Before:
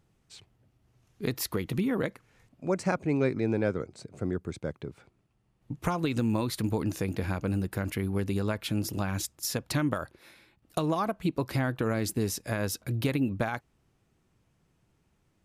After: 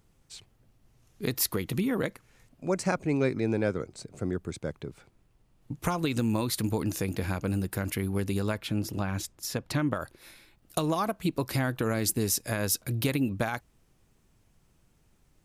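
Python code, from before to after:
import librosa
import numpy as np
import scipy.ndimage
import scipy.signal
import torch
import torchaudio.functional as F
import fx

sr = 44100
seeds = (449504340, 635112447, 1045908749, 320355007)

y = fx.high_shelf(x, sr, hz=4700.0, db=fx.steps((0.0, 8.0), (8.58, -4.5), (10.0, 10.0)))
y = fx.dmg_noise_colour(y, sr, seeds[0], colour='brown', level_db=-65.0)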